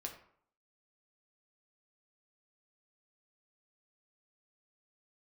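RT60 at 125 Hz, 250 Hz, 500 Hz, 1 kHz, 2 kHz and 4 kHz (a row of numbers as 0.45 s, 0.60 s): 0.60 s, 0.60 s, 0.60 s, 0.65 s, 0.50 s, 0.35 s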